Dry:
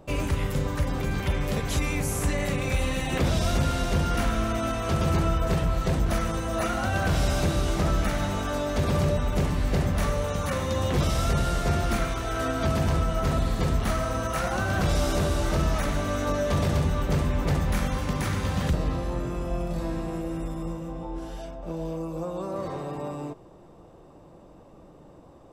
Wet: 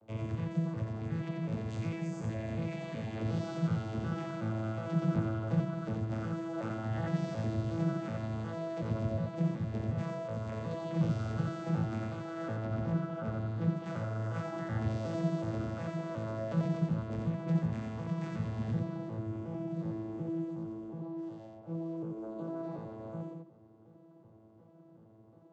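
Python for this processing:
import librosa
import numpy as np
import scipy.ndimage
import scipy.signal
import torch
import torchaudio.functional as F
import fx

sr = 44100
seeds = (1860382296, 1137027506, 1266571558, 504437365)

y = fx.vocoder_arp(x, sr, chord='bare fifth', root=45, every_ms=367)
y = fx.lowpass(y, sr, hz=3500.0, slope=6, at=(12.56, 13.77))
y = y + 10.0 ** (-4.0 / 20.0) * np.pad(y, (int(88 * sr / 1000.0), 0))[:len(y)]
y = F.gain(torch.from_numpy(y), -5.5).numpy()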